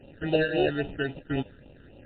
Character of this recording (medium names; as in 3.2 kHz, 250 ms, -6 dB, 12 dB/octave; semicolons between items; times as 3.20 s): aliases and images of a low sample rate 1.1 kHz, jitter 0%; phasing stages 12, 3.7 Hz, lowest notch 730–1700 Hz; MP3